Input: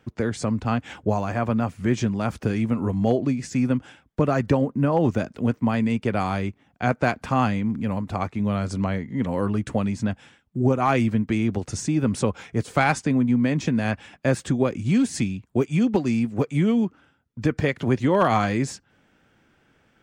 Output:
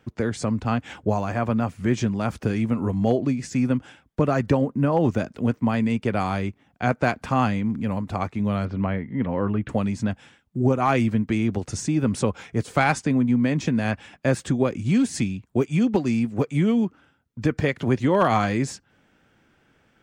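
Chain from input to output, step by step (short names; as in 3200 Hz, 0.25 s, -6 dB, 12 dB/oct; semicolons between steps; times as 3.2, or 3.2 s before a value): 8.65–9.69 LPF 3000 Hz 24 dB/oct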